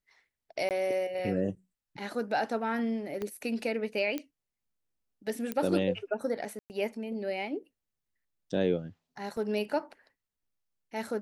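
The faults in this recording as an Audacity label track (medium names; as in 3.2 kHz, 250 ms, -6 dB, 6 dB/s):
0.690000	0.710000	dropout 18 ms
3.220000	3.220000	pop -22 dBFS
4.180000	4.180000	pop -20 dBFS
5.520000	5.520000	pop -18 dBFS
6.590000	6.700000	dropout 109 ms
9.370000	9.370000	dropout 2.6 ms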